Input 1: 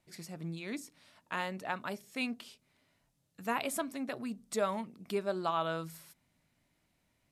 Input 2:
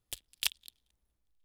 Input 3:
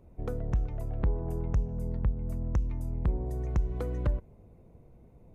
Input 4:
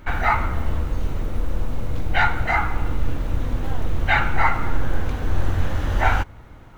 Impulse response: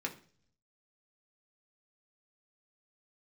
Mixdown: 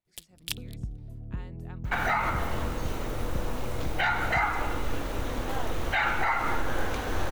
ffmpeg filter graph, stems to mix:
-filter_complex "[0:a]lowpass=8900,volume=-16dB[link_01];[1:a]adelay=50,volume=-2.5dB[link_02];[2:a]equalizer=frequency=125:width_type=o:width=1:gain=6,equalizer=frequency=250:width_type=o:width=1:gain=8,equalizer=frequency=500:width_type=o:width=1:gain=-5,equalizer=frequency=1000:width_type=o:width=1:gain=-8,equalizer=frequency=2000:width_type=o:width=1:gain=-9,adelay=300,volume=-10.5dB[link_03];[3:a]bass=frequency=250:gain=-12,treble=frequency=4000:gain=4,alimiter=limit=-18dB:level=0:latency=1:release=106,adelay=1850,volume=1.5dB[link_04];[link_01][link_02][link_03][link_04]amix=inputs=4:normalize=0"

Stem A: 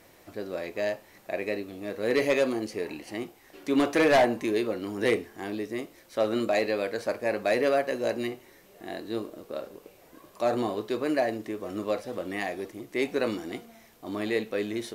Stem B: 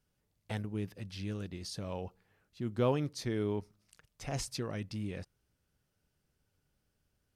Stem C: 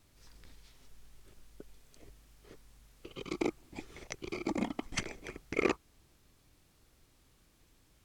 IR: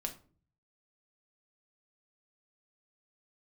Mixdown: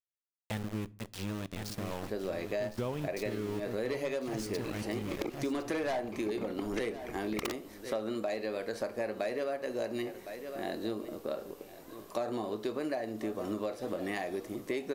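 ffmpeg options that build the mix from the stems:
-filter_complex "[0:a]equalizer=frequency=2300:width=1.5:gain=-3,adelay=1750,volume=-1dB,asplit=3[link_01][link_02][link_03];[link_02]volume=-6.5dB[link_04];[link_03]volume=-17dB[link_05];[1:a]aeval=exprs='val(0)*gte(abs(val(0)),0.0119)':channel_layout=same,volume=1.5dB,asplit=3[link_06][link_07][link_08];[link_07]volume=-12.5dB[link_09];[link_08]volume=-6.5dB[link_10];[2:a]equalizer=frequency=12000:width_type=o:width=2.4:gain=-11,aeval=exprs='(mod(9.44*val(0)+1,2)-1)/9.44':channel_layout=same,adelay=1800,volume=2dB[link_11];[3:a]atrim=start_sample=2205[link_12];[link_04][link_09]amix=inputs=2:normalize=0[link_13];[link_13][link_12]afir=irnorm=-1:irlink=0[link_14];[link_05][link_10]amix=inputs=2:normalize=0,aecho=0:1:1059:1[link_15];[link_01][link_06][link_11][link_14][link_15]amix=inputs=5:normalize=0,acompressor=threshold=-31dB:ratio=10"

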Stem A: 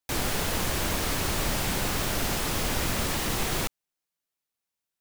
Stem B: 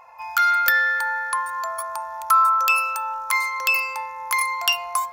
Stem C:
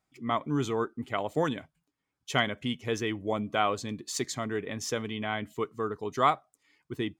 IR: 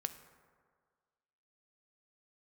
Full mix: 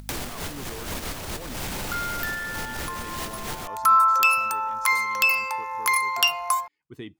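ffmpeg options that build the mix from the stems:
-filter_complex "[0:a]alimiter=level_in=1dB:limit=-24dB:level=0:latency=1:release=121,volume=-1dB,aeval=exprs='val(0)+0.000562*(sin(2*PI*50*n/s)+sin(2*PI*2*50*n/s)/2+sin(2*PI*3*50*n/s)/3+sin(2*PI*4*50*n/s)/4+sin(2*PI*5*50*n/s)/5)':channel_layout=same,aeval=exprs='0.0596*sin(PI/2*1.41*val(0)/0.0596)':channel_layout=same,volume=-3.5dB[link_01];[1:a]adelay=1550,afade=type=in:start_time=3.64:duration=0.31:silence=0.223872[link_02];[2:a]alimiter=limit=-20.5dB:level=0:latency=1:release=27,volume=-16dB,asplit=2[link_03][link_04];[link_04]apad=whole_len=220620[link_05];[link_01][link_05]sidechaincompress=threshold=-52dB:ratio=8:attack=12:release=107[link_06];[link_06][link_02][link_03]amix=inputs=3:normalize=0,acompressor=mode=upward:threshold=-26dB:ratio=2.5"

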